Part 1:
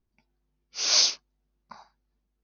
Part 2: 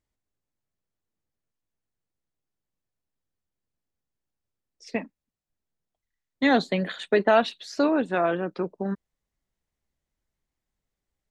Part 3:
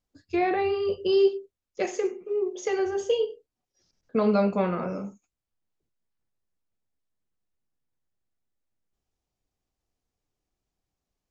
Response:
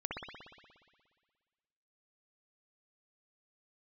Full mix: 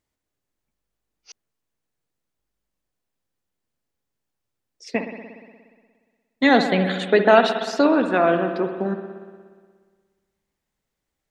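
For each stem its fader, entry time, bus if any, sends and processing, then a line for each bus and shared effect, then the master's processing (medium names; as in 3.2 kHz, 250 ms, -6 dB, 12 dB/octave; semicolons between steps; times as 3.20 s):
+2.0 dB, 0.50 s, muted 1.32–2.39 s, no send, expander on every frequency bin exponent 1.5; upward expansion 1.5:1, over -40 dBFS
+2.5 dB, 0.00 s, send -5.5 dB, bass shelf 92 Hz -9.5 dB
mute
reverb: on, RT60 1.7 s, pre-delay 59 ms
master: none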